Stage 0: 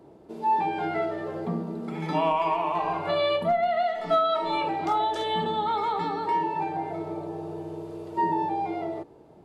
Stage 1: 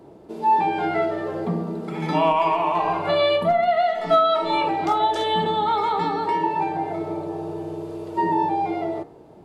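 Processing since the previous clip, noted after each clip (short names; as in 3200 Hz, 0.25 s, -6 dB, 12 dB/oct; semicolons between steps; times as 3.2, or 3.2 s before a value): de-hum 77.84 Hz, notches 29; gain +5.5 dB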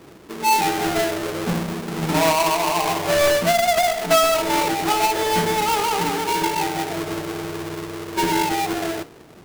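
half-waves squared off; gain -2.5 dB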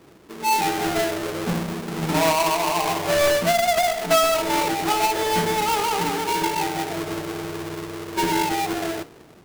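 AGC gain up to 4 dB; gain -5.5 dB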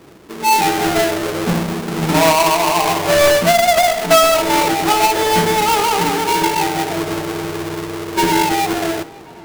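tape echo 0.541 s, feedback 78%, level -23 dB, low-pass 4000 Hz; gain +7 dB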